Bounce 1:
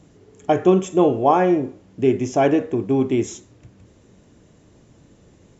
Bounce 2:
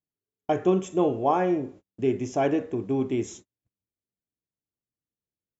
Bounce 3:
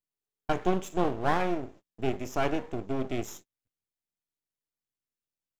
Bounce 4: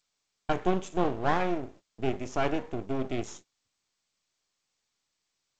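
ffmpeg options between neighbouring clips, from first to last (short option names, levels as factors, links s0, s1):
-af "agate=range=0.01:threshold=0.0126:ratio=16:detection=peak,volume=0.447"
-af "tiltshelf=f=720:g=-3,aeval=exprs='max(val(0),0)':c=same"
-ar 16000 -c:a g722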